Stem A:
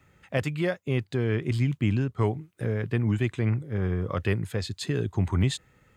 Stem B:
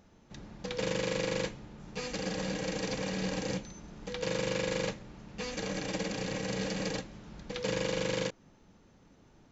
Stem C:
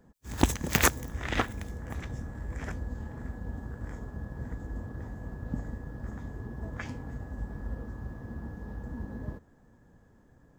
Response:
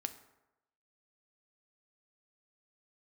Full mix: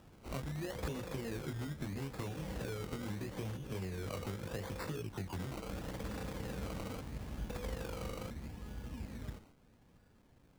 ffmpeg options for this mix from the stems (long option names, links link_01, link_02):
-filter_complex "[0:a]acrossover=split=120|340[link_01][link_02][link_03];[link_01]acompressor=threshold=-42dB:ratio=4[link_04];[link_02]acompressor=threshold=-35dB:ratio=4[link_05];[link_03]acompressor=threshold=-37dB:ratio=4[link_06];[link_04][link_05][link_06]amix=inputs=3:normalize=0,flanger=delay=19:depth=2.8:speed=1.2,volume=0dB,asplit=2[link_07][link_08];[1:a]acompressor=threshold=-40dB:ratio=6,volume=-1.5dB[link_09];[2:a]highshelf=frequency=4400:gain=10.5,acrossover=split=160[link_10][link_11];[link_11]acompressor=threshold=-42dB:ratio=2.5[link_12];[link_10][link_12]amix=inputs=2:normalize=0,volume=-6dB[link_13];[link_08]apad=whole_len=466772[link_14];[link_13][link_14]sidechaincompress=threshold=-46dB:ratio=8:attack=16:release=239[link_15];[link_07][link_09]amix=inputs=2:normalize=0,acompressor=threshold=-37dB:ratio=10,volume=0dB[link_16];[link_15][link_16]amix=inputs=2:normalize=0,acrusher=samples=20:mix=1:aa=0.000001:lfo=1:lforange=12:lforate=0.77"